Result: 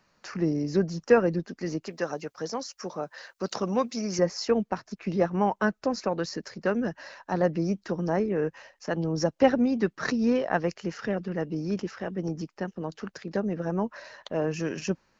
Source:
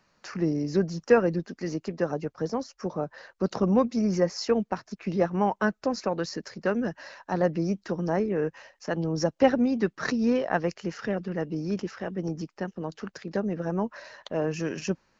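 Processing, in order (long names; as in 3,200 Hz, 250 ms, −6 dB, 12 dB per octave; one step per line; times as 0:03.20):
0:01.86–0:04.19: spectral tilt +3 dB per octave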